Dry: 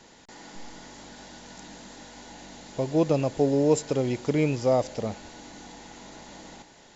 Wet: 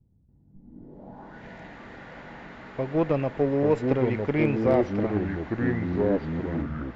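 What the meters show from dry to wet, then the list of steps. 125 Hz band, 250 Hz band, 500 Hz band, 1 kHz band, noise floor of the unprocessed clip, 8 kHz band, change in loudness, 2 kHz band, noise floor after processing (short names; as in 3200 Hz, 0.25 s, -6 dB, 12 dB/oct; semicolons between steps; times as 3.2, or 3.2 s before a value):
+2.5 dB, +2.5 dB, +1.0 dB, +1.0 dB, -53 dBFS, n/a, 0.0 dB, +5.5 dB, -60 dBFS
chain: low-pass sweep 110 Hz -> 2000 Hz, 0.48–1.44; echoes that change speed 0.114 s, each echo -4 st, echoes 3; added harmonics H 4 -23 dB, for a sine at -9.5 dBFS; gain -1.5 dB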